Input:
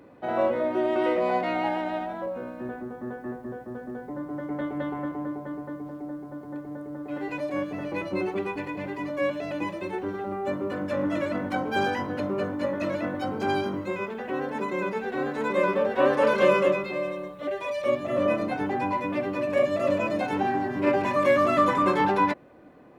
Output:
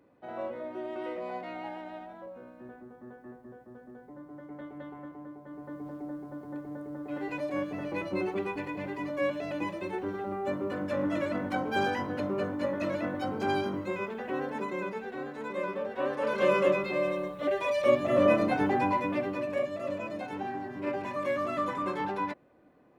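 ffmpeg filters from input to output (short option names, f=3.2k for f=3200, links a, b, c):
-af "volume=8.5dB,afade=t=in:st=5.44:d=0.44:silence=0.334965,afade=t=out:st=14.36:d=0.92:silence=0.446684,afade=t=in:st=16.21:d=0.94:silence=0.266073,afade=t=out:st=18.65:d=1.06:silence=0.266073"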